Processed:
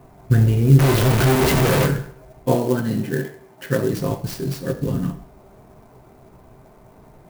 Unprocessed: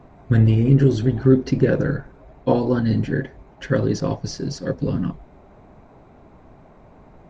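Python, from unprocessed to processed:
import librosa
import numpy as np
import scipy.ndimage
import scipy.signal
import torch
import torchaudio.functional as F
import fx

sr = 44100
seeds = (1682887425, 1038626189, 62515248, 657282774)

y = fx.clip_1bit(x, sr, at=(0.79, 1.86))
y = fx.highpass(y, sr, hz=150.0, slope=12, at=(2.55, 3.93))
y = fx.rev_fdn(y, sr, rt60_s=0.59, lf_ratio=0.75, hf_ratio=0.95, size_ms=46.0, drr_db=4.0)
y = fx.clock_jitter(y, sr, seeds[0], jitter_ms=0.036)
y = y * librosa.db_to_amplitude(-1.0)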